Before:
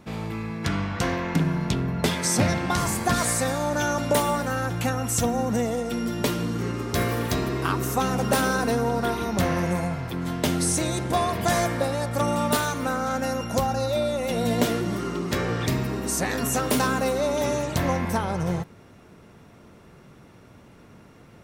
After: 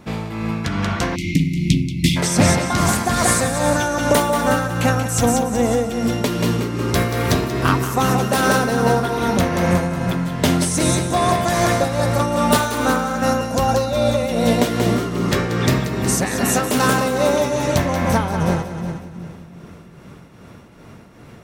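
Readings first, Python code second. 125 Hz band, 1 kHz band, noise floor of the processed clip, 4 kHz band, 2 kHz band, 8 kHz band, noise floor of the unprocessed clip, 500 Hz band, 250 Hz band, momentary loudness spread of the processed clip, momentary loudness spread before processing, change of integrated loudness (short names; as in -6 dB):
+7.0 dB, +6.5 dB, -42 dBFS, +6.5 dB, +6.5 dB, +5.5 dB, -50 dBFS, +6.5 dB, +7.0 dB, 5 LU, 5 LU, +6.5 dB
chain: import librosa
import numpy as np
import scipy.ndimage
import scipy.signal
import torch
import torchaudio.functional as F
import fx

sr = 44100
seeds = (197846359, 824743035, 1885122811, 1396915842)

p1 = x + fx.echo_split(x, sr, split_hz=310.0, low_ms=342, high_ms=183, feedback_pct=52, wet_db=-6, dry=0)
p2 = fx.tremolo_shape(p1, sr, shape='triangle', hz=2.5, depth_pct=55)
p3 = fx.spec_erase(p2, sr, start_s=1.15, length_s=1.02, low_hz=360.0, high_hz=2000.0)
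p4 = fx.doppler_dist(p3, sr, depth_ms=0.11)
y = p4 * librosa.db_to_amplitude(8.0)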